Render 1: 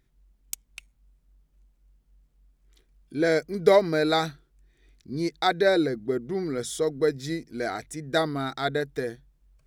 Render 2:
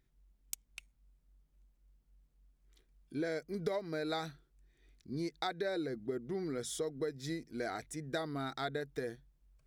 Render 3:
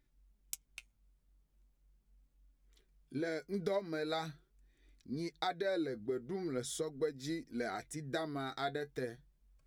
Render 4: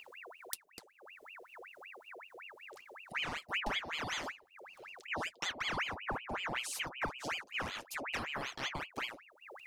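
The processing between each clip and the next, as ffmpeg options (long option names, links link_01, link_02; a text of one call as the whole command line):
ffmpeg -i in.wav -af "acompressor=threshold=-27dB:ratio=6,volume=-6.5dB" out.wav
ffmpeg -i in.wav -af "flanger=delay=3.4:depth=6.8:regen=52:speed=0.41:shape=sinusoidal,volume=3.5dB" out.wav
ffmpeg -i in.wav -af "acompressor=mode=upward:threshold=-47dB:ratio=2.5,bass=frequency=250:gain=8,treble=frequency=4000:gain=5,aeval=exprs='val(0)*sin(2*PI*1600*n/s+1600*0.75/5.3*sin(2*PI*5.3*n/s))':channel_layout=same" out.wav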